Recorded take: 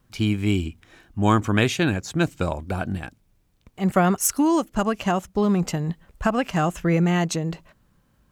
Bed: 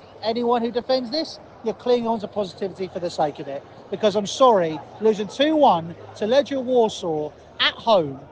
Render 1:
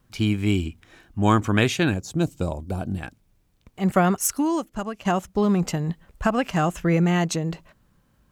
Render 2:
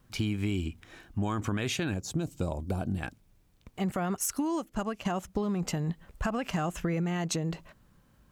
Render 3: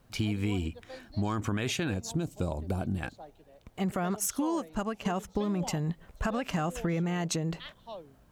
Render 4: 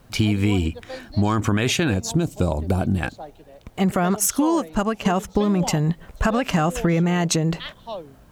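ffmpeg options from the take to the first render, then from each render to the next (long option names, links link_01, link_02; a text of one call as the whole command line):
ffmpeg -i in.wav -filter_complex "[0:a]asettb=1/sr,asplit=3[link_01][link_02][link_03];[link_01]atrim=end=1.944[link_04];[link_02]atrim=start=1.94:end=2.98,asetpts=PTS-STARTPTS,afade=type=in:duration=0.004:curve=qsin,afade=type=out:start_time=1.036:duration=0.004:curve=qsin,equalizer=frequency=1800:width=0.8:gain=-13[link_05];[link_03]atrim=start=2.976[link_06];[link_04][link_05]acrossfade=duration=0.004:curve1=hsin:curve2=qsin[link_07];[link_07][link_06]acrossfade=duration=0.004:curve1=qsin:curve2=hsin,asplit=2[link_08][link_09];[link_08]atrim=end=5.05,asetpts=PTS-STARTPTS,afade=type=out:start_time=3.97:duration=1.08:silence=0.298538[link_10];[link_09]atrim=start=5.05,asetpts=PTS-STARTPTS,afade=type=in:duration=0.004:curve=hsin:silence=0.298538[link_11];[link_10][link_11]concat=n=2:v=0:a=1" out.wav
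ffmpeg -i in.wav -af "alimiter=limit=-15dB:level=0:latency=1:release=25,acompressor=threshold=-27dB:ratio=6" out.wav
ffmpeg -i in.wav -i bed.wav -filter_complex "[1:a]volume=-26.5dB[link_01];[0:a][link_01]amix=inputs=2:normalize=0" out.wav
ffmpeg -i in.wav -af "volume=10.5dB" out.wav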